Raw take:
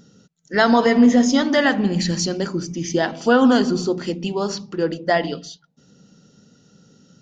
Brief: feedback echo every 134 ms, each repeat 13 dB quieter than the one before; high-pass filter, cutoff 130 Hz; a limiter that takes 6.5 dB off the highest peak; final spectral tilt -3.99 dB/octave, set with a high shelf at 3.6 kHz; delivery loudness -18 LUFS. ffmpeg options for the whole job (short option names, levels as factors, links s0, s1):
-af "highpass=130,highshelf=f=3600:g=4.5,alimiter=limit=0.335:level=0:latency=1,aecho=1:1:134|268|402:0.224|0.0493|0.0108,volume=1.41"